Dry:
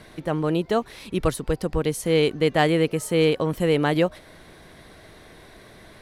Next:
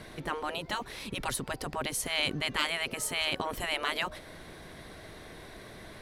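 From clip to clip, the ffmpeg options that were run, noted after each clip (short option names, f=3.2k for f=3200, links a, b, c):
-af "afftfilt=real='re*lt(hypot(re,im),0.224)':imag='im*lt(hypot(re,im),0.224)':win_size=1024:overlap=0.75"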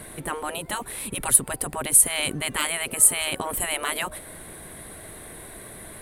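-af "highshelf=f=7.1k:t=q:w=3:g=10.5,volume=4dB"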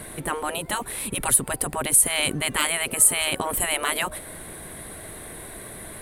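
-af "alimiter=level_in=6.5dB:limit=-1dB:release=50:level=0:latency=1,volume=-4dB"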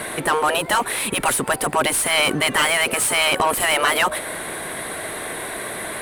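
-filter_complex "[0:a]asplit=2[a][b];[b]highpass=f=720:p=1,volume=24dB,asoftclip=type=tanh:threshold=-4.5dB[c];[a][c]amix=inputs=2:normalize=0,lowpass=f=3.3k:p=1,volume=-6dB,volume=-2dB"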